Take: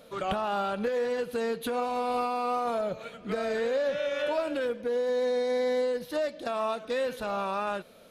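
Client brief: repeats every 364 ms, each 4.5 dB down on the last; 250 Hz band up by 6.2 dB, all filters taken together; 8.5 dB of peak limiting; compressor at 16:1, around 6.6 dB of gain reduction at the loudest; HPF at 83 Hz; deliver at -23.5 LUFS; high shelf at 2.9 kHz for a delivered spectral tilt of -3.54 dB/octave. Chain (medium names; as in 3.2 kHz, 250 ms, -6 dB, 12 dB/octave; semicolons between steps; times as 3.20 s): high-pass 83 Hz; peaking EQ 250 Hz +7 dB; treble shelf 2.9 kHz +3.5 dB; compression 16:1, threshold -29 dBFS; peak limiter -29.5 dBFS; feedback delay 364 ms, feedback 60%, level -4.5 dB; trim +12 dB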